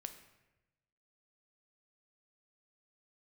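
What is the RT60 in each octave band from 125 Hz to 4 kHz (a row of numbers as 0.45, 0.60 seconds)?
1.4, 1.2, 1.1, 0.95, 1.0, 0.75 seconds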